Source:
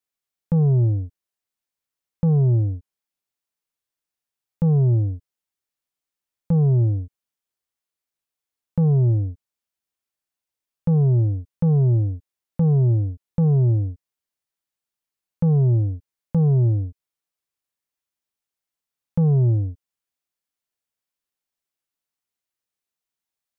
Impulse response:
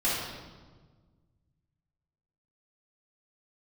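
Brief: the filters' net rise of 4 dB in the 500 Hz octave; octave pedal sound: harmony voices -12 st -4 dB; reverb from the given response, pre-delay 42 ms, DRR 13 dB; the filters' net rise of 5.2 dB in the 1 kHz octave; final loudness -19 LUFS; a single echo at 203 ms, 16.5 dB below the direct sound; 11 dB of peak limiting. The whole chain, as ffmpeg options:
-filter_complex "[0:a]equalizer=f=500:t=o:g=4,equalizer=f=1000:t=o:g=5.5,alimiter=limit=0.0631:level=0:latency=1,aecho=1:1:203:0.15,asplit=2[s0][s1];[1:a]atrim=start_sample=2205,adelay=42[s2];[s1][s2]afir=irnorm=-1:irlink=0,volume=0.0631[s3];[s0][s3]amix=inputs=2:normalize=0,asplit=2[s4][s5];[s5]asetrate=22050,aresample=44100,atempo=2,volume=0.631[s6];[s4][s6]amix=inputs=2:normalize=0,volume=2.99"

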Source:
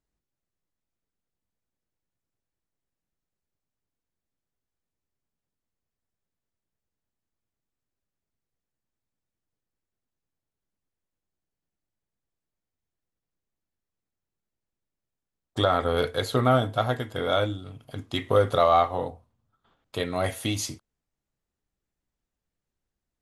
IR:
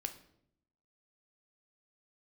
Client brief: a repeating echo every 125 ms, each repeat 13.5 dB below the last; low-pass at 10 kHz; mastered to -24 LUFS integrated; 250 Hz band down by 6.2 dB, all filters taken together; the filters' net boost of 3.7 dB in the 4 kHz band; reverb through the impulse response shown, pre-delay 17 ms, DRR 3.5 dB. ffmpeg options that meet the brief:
-filter_complex "[0:a]lowpass=10000,equalizer=f=250:t=o:g=-8,equalizer=f=4000:t=o:g=4.5,aecho=1:1:125|250:0.211|0.0444,asplit=2[s0][s1];[1:a]atrim=start_sample=2205,adelay=17[s2];[s1][s2]afir=irnorm=-1:irlink=0,volume=0.75[s3];[s0][s3]amix=inputs=2:normalize=0"

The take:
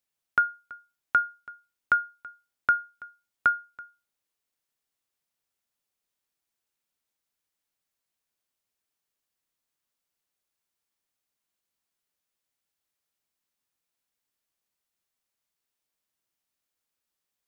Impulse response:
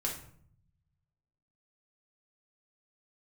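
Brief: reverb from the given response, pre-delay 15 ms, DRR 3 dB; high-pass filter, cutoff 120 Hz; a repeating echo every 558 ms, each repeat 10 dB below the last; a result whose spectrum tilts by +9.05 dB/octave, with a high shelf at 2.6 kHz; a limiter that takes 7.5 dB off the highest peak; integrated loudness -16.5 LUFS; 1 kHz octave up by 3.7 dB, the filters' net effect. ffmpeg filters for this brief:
-filter_complex "[0:a]highpass=120,equalizer=f=1000:t=o:g=6,highshelf=f=2600:g=3,alimiter=limit=0.188:level=0:latency=1,aecho=1:1:558|1116|1674|2232:0.316|0.101|0.0324|0.0104,asplit=2[s0][s1];[1:a]atrim=start_sample=2205,adelay=15[s2];[s1][s2]afir=irnorm=-1:irlink=0,volume=0.501[s3];[s0][s3]amix=inputs=2:normalize=0,volume=3.35"

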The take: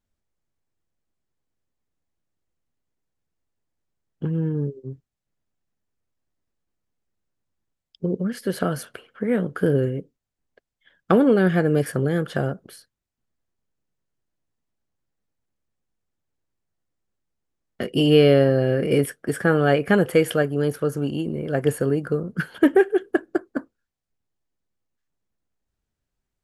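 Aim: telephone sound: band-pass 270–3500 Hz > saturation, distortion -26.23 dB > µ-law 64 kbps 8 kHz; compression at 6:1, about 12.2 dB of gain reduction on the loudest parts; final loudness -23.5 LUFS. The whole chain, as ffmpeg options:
-af "acompressor=threshold=0.0631:ratio=6,highpass=270,lowpass=3500,asoftclip=threshold=0.188,volume=2.82" -ar 8000 -c:a pcm_mulaw

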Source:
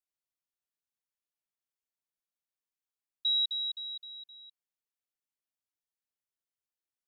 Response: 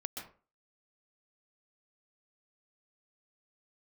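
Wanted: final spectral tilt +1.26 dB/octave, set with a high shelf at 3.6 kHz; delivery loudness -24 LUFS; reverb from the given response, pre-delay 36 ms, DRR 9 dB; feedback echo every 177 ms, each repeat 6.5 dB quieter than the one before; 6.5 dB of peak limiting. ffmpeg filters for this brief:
-filter_complex "[0:a]highshelf=f=3600:g=-6,alimiter=level_in=3.16:limit=0.0631:level=0:latency=1,volume=0.316,aecho=1:1:177|354|531|708|885|1062:0.473|0.222|0.105|0.0491|0.0231|0.0109,asplit=2[s0][s1];[1:a]atrim=start_sample=2205,adelay=36[s2];[s1][s2]afir=irnorm=-1:irlink=0,volume=0.376[s3];[s0][s3]amix=inputs=2:normalize=0,volume=3.35"

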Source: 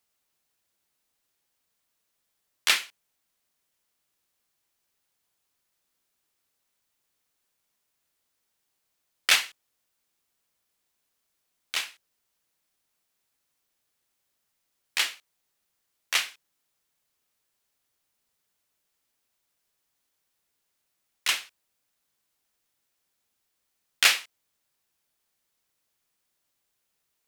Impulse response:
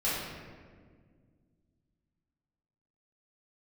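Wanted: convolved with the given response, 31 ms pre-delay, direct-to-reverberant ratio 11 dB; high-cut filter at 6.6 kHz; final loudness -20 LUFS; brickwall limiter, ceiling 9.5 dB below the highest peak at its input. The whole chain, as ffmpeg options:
-filter_complex "[0:a]lowpass=6600,alimiter=limit=0.2:level=0:latency=1,asplit=2[s0][s1];[1:a]atrim=start_sample=2205,adelay=31[s2];[s1][s2]afir=irnorm=-1:irlink=0,volume=0.0944[s3];[s0][s3]amix=inputs=2:normalize=0,volume=3.35"

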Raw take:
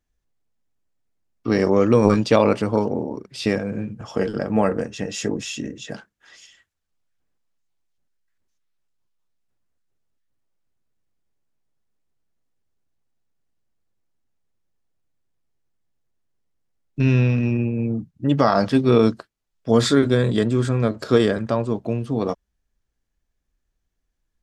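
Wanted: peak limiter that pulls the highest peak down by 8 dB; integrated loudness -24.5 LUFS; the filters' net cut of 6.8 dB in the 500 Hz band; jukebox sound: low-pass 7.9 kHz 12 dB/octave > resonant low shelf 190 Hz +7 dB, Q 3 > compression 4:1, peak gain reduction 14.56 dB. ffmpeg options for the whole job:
-af "equalizer=f=500:t=o:g=-6.5,alimiter=limit=0.266:level=0:latency=1,lowpass=7900,lowshelf=f=190:t=q:w=3:g=7,acompressor=threshold=0.0631:ratio=4,volume=1.41"

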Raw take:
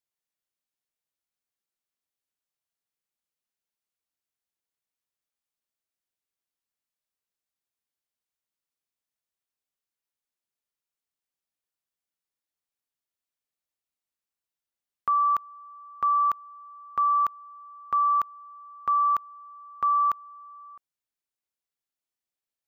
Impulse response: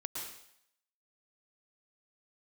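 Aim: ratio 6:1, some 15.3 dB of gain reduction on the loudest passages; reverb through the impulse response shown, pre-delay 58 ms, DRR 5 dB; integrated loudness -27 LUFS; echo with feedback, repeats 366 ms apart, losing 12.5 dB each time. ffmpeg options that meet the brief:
-filter_complex "[0:a]acompressor=threshold=0.0126:ratio=6,aecho=1:1:366|732|1098:0.237|0.0569|0.0137,asplit=2[s0][s1];[1:a]atrim=start_sample=2205,adelay=58[s2];[s1][s2]afir=irnorm=-1:irlink=0,volume=0.531[s3];[s0][s3]amix=inputs=2:normalize=0,volume=5.31"

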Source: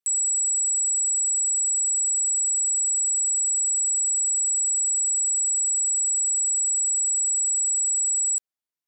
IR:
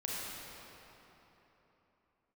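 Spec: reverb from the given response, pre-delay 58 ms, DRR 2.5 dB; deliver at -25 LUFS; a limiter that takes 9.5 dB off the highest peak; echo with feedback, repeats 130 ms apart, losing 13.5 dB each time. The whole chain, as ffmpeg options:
-filter_complex "[0:a]alimiter=level_in=1.88:limit=0.0631:level=0:latency=1,volume=0.531,aecho=1:1:130|260:0.211|0.0444,asplit=2[s0][s1];[1:a]atrim=start_sample=2205,adelay=58[s2];[s1][s2]afir=irnorm=-1:irlink=0,volume=0.501[s3];[s0][s3]amix=inputs=2:normalize=0,volume=1.26"

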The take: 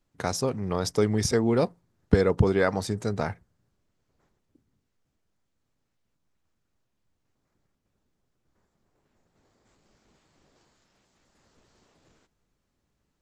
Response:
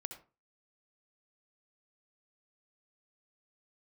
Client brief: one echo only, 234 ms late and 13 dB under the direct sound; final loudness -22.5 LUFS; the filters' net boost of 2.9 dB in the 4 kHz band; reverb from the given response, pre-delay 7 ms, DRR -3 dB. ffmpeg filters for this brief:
-filter_complex "[0:a]equalizer=f=4000:t=o:g=4,aecho=1:1:234:0.224,asplit=2[s0][s1];[1:a]atrim=start_sample=2205,adelay=7[s2];[s1][s2]afir=irnorm=-1:irlink=0,volume=1.88[s3];[s0][s3]amix=inputs=2:normalize=0,volume=0.841"

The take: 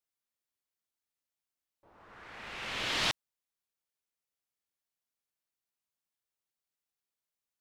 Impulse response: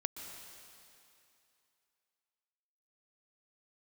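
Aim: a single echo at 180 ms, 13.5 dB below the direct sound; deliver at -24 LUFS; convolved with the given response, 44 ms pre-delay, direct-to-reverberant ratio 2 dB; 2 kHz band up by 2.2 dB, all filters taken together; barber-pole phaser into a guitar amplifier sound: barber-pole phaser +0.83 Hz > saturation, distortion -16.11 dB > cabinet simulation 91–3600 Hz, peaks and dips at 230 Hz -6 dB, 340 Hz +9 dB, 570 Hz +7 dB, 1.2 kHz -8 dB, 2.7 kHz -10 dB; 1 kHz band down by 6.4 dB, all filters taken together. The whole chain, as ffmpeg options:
-filter_complex "[0:a]equalizer=f=1000:t=o:g=-8,equalizer=f=2000:t=o:g=8.5,aecho=1:1:180:0.211,asplit=2[s0][s1];[1:a]atrim=start_sample=2205,adelay=44[s2];[s1][s2]afir=irnorm=-1:irlink=0,volume=0.75[s3];[s0][s3]amix=inputs=2:normalize=0,asplit=2[s4][s5];[s5]afreqshift=0.83[s6];[s4][s6]amix=inputs=2:normalize=1,asoftclip=threshold=0.0447,highpass=91,equalizer=f=230:t=q:w=4:g=-6,equalizer=f=340:t=q:w=4:g=9,equalizer=f=570:t=q:w=4:g=7,equalizer=f=1200:t=q:w=4:g=-8,equalizer=f=2700:t=q:w=4:g=-10,lowpass=f=3600:w=0.5412,lowpass=f=3600:w=1.3066,volume=7.08"

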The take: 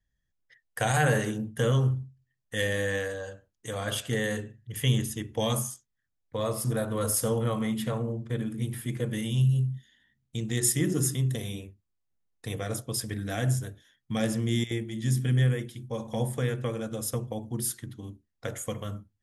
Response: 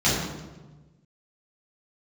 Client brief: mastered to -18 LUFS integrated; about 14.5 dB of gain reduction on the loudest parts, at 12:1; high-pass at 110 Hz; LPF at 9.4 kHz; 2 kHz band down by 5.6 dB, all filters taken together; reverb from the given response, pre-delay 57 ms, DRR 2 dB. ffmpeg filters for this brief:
-filter_complex "[0:a]highpass=110,lowpass=9400,equalizer=f=2000:t=o:g=-7,acompressor=threshold=0.0158:ratio=12,asplit=2[s0][s1];[1:a]atrim=start_sample=2205,adelay=57[s2];[s1][s2]afir=irnorm=-1:irlink=0,volume=0.112[s3];[s0][s3]amix=inputs=2:normalize=0,volume=7.08"

